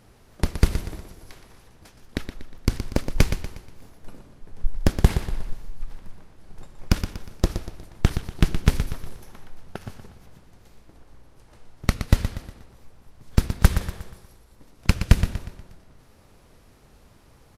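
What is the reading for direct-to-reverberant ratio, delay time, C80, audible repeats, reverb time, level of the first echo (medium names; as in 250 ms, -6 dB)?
no reverb, 120 ms, no reverb, 4, no reverb, -9.5 dB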